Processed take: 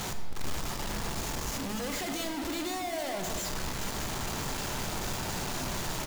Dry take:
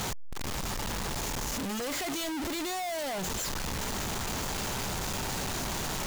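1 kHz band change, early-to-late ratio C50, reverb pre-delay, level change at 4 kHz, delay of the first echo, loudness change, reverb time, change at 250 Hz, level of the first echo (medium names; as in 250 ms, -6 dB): -1.0 dB, 5.5 dB, 3 ms, -1.5 dB, 371 ms, -1.0 dB, 2.2 s, -0.5 dB, -14.5 dB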